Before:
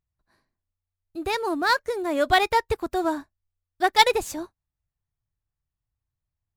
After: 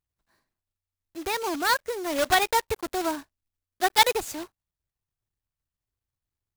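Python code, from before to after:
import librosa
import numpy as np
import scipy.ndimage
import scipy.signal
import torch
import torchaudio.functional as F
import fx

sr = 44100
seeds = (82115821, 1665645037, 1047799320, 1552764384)

y = fx.block_float(x, sr, bits=3)
y = fx.low_shelf(y, sr, hz=400.0, db=-3.5)
y = y * 10.0 ** (-2.0 / 20.0)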